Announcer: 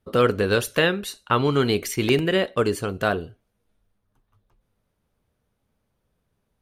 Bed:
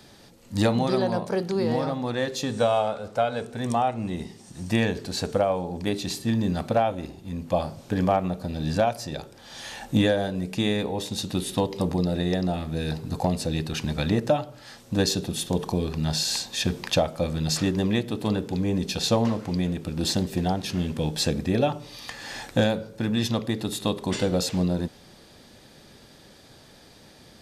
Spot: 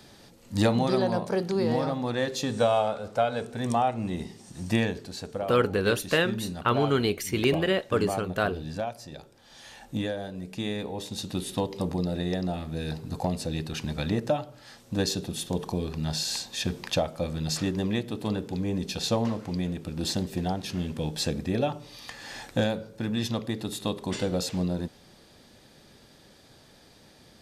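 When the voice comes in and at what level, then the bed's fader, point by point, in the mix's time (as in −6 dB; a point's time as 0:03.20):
5.35 s, −4.0 dB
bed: 0:04.73 −1 dB
0:05.21 −9.5 dB
0:10.14 −9.5 dB
0:11.32 −4 dB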